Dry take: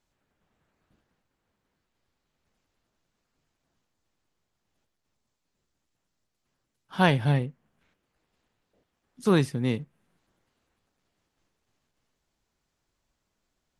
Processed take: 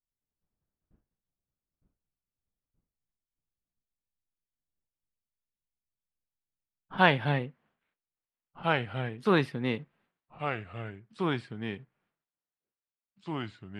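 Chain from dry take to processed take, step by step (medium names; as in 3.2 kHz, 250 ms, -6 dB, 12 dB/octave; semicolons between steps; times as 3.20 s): expander -59 dBFS; tilt EQ -2.5 dB/octave, from 6.97 s +3.5 dB/octave; ever faster or slower copies 799 ms, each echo -2 st, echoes 2, each echo -6 dB; distance through air 430 m; trim +3.5 dB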